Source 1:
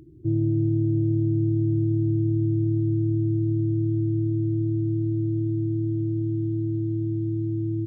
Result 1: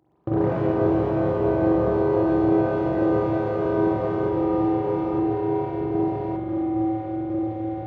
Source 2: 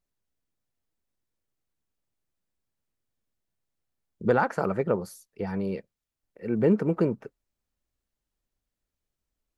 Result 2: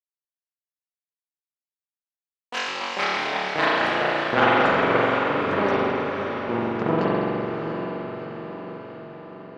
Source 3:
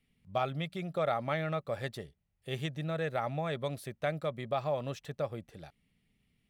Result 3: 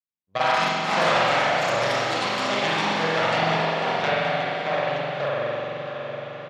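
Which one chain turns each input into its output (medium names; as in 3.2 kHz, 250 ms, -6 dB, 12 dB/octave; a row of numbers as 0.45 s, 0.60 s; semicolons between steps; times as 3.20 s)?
trance gate "x.xxx.xxxxx.xxx." 111 bpm -60 dB; power-law waveshaper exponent 2; high-pass 48 Hz; treble shelf 5.1 kHz -11.5 dB; compression 2:1, threshold -44 dBFS; tilt EQ +2.5 dB/octave; spring tank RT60 2.6 s, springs 43 ms, chirp 25 ms, DRR -8 dB; resampled via 16 kHz; echo that smears into a reverb 696 ms, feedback 56%, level -7 dB; ever faster or slower copies 120 ms, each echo +4 st, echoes 3; normalise loudness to -23 LUFS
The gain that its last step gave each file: +15.5 dB, +17.5 dB, +16.0 dB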